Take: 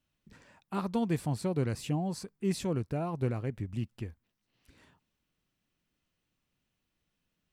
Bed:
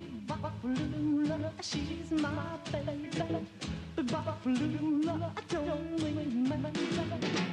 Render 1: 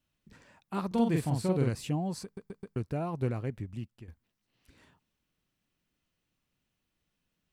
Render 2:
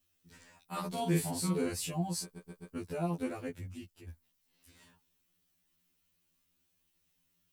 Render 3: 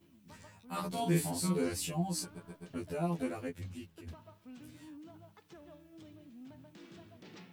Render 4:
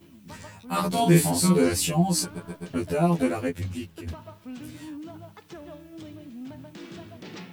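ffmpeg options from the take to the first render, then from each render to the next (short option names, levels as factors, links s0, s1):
-filter_complex "[0:a]asettb=1/sr,asplit=3[s0][s1][s2];[s0]atrim=end=0.874[s3];[s1]atrim=start=0.87:end=1.7,asetpts=PTS-STARTPTS,afade=t=in:d=0.004:c=qsin,afade=t=out:st=0.826:d=0.004:c=qsin,asplit=2[s4][s5];[s5]adelay=43,volume=0.794[s6];[s4][s6]amix=inputs=2:normalize=0,atrim=end_sample=36603[s7];[s2]atrim=start=1.696[s8];[s3][s7]acrossfade=d=0.004:c1=hsin:c2=qsin[s9];[s9][s8]acrossfade=d=0.004:c1=qsin:c2=hsin,asplit=6[s10][s11][s12][s13][s14][s15];[s10]atrim=end=2.372[s16];[s11]atrim=start=2.238:end=2.372[s17];[s12]atrim=start=2.238:end=2.372[s18];[s13]atrim=start=2.238:end=2.372[s19];[s14]atrim=start=2.758:end=4.08,asetpts=PTS-STARTPTS,afade=t=out:st=0.712:d=0.61:silence=0.237137[s20];[s15]atrim=start=4.08,asetpts=PTS-STARTPTS,afade=t=in:d=0.004:c=hsin:silence=0.237137[s21];[s16][s17]acrossfade=d=0.004:c1=hsin:c2=hsin[s22];[s22][s18]acrossfade=d=0.004:c1=hsin:c2=hsin[s23];[s23][s19]acrossfade=d=0.004:c1=hsin:c2=hsin[s24];[s20][s21]concat=n=2:v=0:a=1[s25];[s24][s25]acrossfade=d=0.004:c1=hsin:c2=hsin"
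-af "crystalizer=i=2.5:c=0,afftfilt=real='re*2*eq(mod(b,4),0)':imag='im*2*eq(mod(b,4),0)':win_size=2048:overlap=0.75"
-filter_complex "[1:a]volume=0.0944[s0];[0:a][s0]amix=inputs=2:normalize=0"
-af "volume=3.98"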